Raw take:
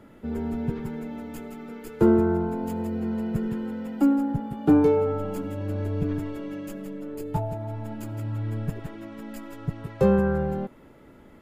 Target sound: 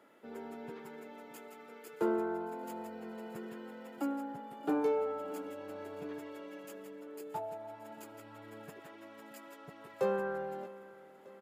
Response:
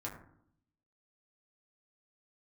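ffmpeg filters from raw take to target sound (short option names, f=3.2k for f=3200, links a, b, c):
-af "highpass=470,aecho=1:1:624|1248|1872|2496|3120:0.126|0.068|0.0367|0.0198|0.0107,volume=-6.5dB"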